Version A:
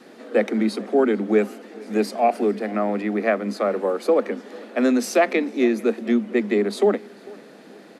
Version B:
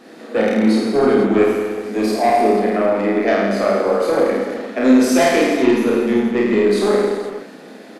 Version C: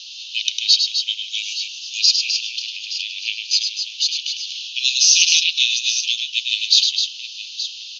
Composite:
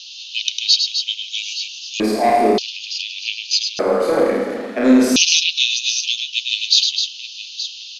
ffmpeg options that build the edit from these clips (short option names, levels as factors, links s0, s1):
-filter_complex "[1:a]asplit=2[s0][s1];[2:a]asplit=3[s2][s3][s4];[s2]atrim=end=2.002[s5];[s0]atrim=start=1.998:end=2.582[s6];[s3]atrim=start=2.578:end=3.792[s7];[s1]atrim=start=3.788:end=5.162[s8];[s4]atrim=start=5.158[s9];[s5][s6]acrossfade=d=0.004:c1=hsin:c2=hsin[s10];[s10][s7]acrossfade=d=0.004:c1=hsin:c2=hsin[s11];[s11][s8]acrossfade=d=0.004:c1=hsin:c2=hsin[s12];[s12][s9]acrossfade=d=0.004:c1=hsin:c2=hsin"